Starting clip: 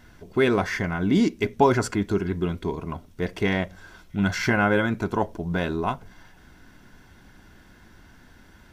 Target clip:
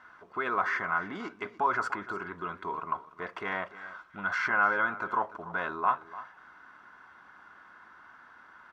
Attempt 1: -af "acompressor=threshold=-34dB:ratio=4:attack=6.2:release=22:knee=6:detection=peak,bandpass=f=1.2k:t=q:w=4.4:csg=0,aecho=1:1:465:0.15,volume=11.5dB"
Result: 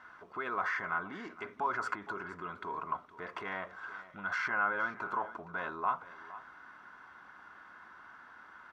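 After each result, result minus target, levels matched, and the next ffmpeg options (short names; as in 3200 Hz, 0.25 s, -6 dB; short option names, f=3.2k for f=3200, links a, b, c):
echo 0.17 s late; compressor: peak gain reduction +6 dB
-af "acompressor=threshold=-34dB:ratio=4:attack=6.2:release=22:knee=6:detection=peak,bandpass=f=1.2k:t=q:w=4.4:csg=0,aecho=1:1:295:0.15,volume=11.5dB"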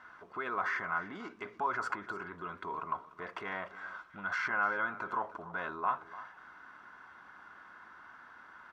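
compressor: peak gain reduction +6 dB
-af "acompressor=threshold=-26dB:ratio=4:attack=6.2:release=22:knee=6:detection=peak,bandpass=f=1.2k:t=q:w=4.4:csg=0,aecho=1:1:295:0.15,volume=11.5dB"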